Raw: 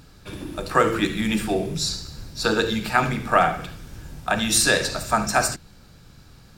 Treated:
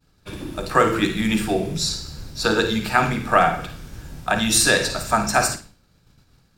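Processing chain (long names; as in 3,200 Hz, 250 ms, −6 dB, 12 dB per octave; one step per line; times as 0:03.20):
downward expander −39 dBFS
on a send: flutter between parallel walls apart 9.2 metres, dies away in 0.29 s
on the sum: level +1.5 dB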